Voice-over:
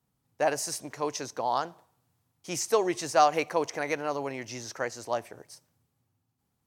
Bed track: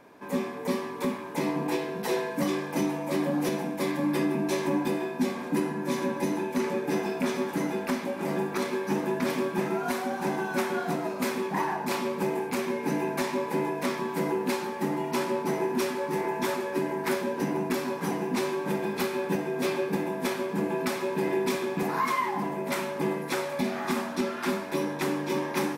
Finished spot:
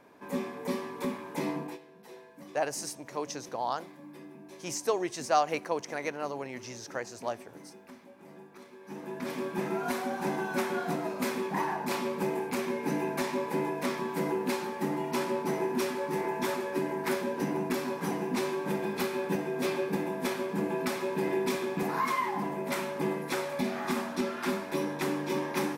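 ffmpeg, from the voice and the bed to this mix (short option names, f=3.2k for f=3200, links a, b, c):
-filter_complex "[0:a]adelay=2150,volume=-4dB[a];[1:a]volume=15dB,afade=t=out:st=1.52:d=0.27:silence=0.133352,afade=t=in:st=8.78:d=1.04:silence=0.112202[b];[a][b]amix=inputs=2:normalize=0"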